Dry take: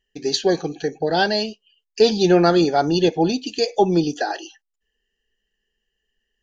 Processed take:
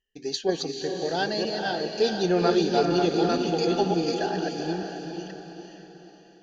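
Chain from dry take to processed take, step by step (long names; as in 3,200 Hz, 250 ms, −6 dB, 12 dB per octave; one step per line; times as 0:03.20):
delay that plays each chunk backwards 483 ms, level −3 dB
feedback delay with all-pass diffusion 456 ms, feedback 46%, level −5 dB
level −8.5 dB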